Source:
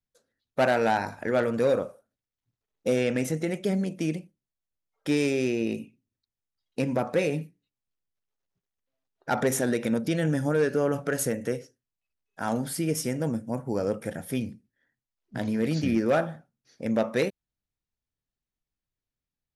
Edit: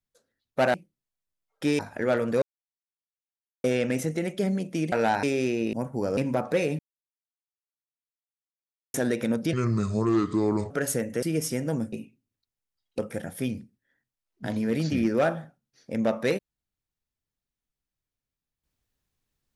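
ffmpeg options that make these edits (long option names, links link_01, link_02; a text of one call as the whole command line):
ffmpeg -i in.wav -filter_complex "[0:a]asplit=16[link_01][link_02][link_03][link_04][link_05][link_06][link_07][link_08][link_09][link_10][link_11][link_12][link_13][link_14][link_15][link_16];[link_01]atrim=end=0.742[link_17];[link_02]atrim=start=4.178:end=5.232[link_18];[link_03]atrim=start=1.048:end=1.68,asetpts=PTS-STARTPTS,afade=type=out:start_time=0.628:duration=0.004:curve=hsin[link_19];[link_04]atrim=start=1.68:end=2.9,asetpts=PTS-STARTPTS,volume=0[link_20];[link_05]atrim=start=2.9:end=4.182,asetpts=PTS-STARTPTS,afade=type=in:duration=0.004:curve=hsin[link_21];[link_06]atrim=start=0.738:end=1.052[link_22];[link_07]atrim=start=5.228:end=5.732[link_23];[link_08]atrim=start=13.458:end=13.902[link_24];[link_09]atrim=start=6.788:end=7.41,asetpts=PTS-STARTPTS,afade=type=out:start_time=0.618:duration=0.004:curve=hsin[link_25];[link_10]atrim=start=7.41:end=9.56,asetpts=PTS-STARTPTS,volume=0[link_26];[link_11]atrim=start=9.56:end=10.154,asetpts=PTS-STARTPTS,afade=type=in:duration=0.004:curve=hsin[link_27];[link_12]atrim=start=10.15:end=11.02,asetpts=PTS-STARTPTS,asetrate=32634,aresample=44100,atrim=end_sample=51847,asetpts=PTS-STARTPTS[link_28];[link_13]atrim=start=11.016:end=11.542[link_29];[link_14]atrim=start=12.758:end=13.462[link_30];[link_15]atrim=start=5.728:end=6.792[link_31];[link_16]atrim=start=13.898[link_32];[link_17][link_18]acrossfade=duration=0.004:curve1=hsin:curve2=hsin[link_33];[link_19][link_20][link_21]concat=n=3:v=0:a=1[link_34];[link_33][link_34]acrossfade=duration=0.004:curve1=hsin:curve2=hsin[link_35];[link_35][link_22]acrossfade=duration=0.004:curve1=hsin:curve2=hsin[link_36];[link_36][link_23]acrossfade=duration=0.004:curve1=hsin:curve2=hsin[link_37];[link_37][link_24]acrossfade=duration=0.004:curve1=hsin:curve2=hsin[link_38];[link_25][link_26][link_27]concat=n=3:v=0:a=1[link_39];[link_38][link_39]acrossfade=duration=0.004:curve1=hsin:curve2=hsin[link_40];[link_40][link_28]acrossfade=duration=0.004:curve1=hsin:curve2=hsin[link_41];[link_41][link_29]acrossfade=duration=0.004:curve1=hsin:curve2=hsin[link_42];[link_42][link_30]acrossfade=duration=0.004:curve1=hsin:curve2=hsin[link_43];[link_43][link_31]acrossfade=duration=0.004:curve1=hsin:curve2=hsin[link_44];[link_44][link_32]acrossfade=duration=0.004:curve1=hsin:curve2=hsin" out.wav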